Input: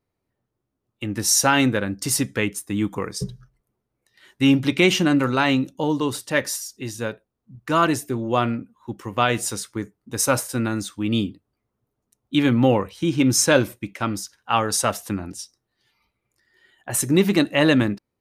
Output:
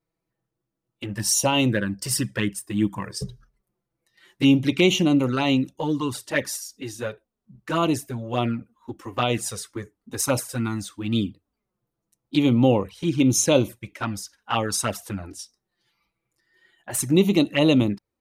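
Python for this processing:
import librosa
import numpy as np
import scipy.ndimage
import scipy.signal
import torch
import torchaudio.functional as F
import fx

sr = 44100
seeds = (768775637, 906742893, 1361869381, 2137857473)

y = fx.ripple_eq(x, sr, per_octave=1.3, db=6, at=(1.08, 3.22))
y = fx.env_flanger(y, sr, rest_ms=6.1, full_db=-15.0)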